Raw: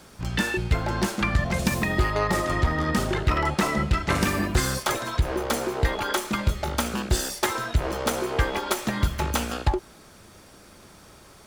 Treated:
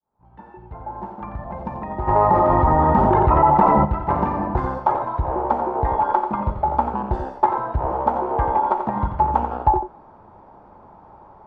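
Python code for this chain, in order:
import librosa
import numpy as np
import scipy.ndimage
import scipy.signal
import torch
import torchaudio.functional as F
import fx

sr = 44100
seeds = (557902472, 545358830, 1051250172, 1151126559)

p1 = fx.fade_in_head(x, sr, length_s=3.77)
p2 = fx.lowpass_res(p1, sr, hz=890.0, q=6.7)
p3 = p2 + fx.echo_single(p2, sr, ms=88, db=-8.5, dry=0)
p4 = fx.env_flatten(p3, sr, amount_pct=70, at=(2.07, 3.84), fade=0.02)
y = p4 * 10.0 ** (-1.0 / 20.0)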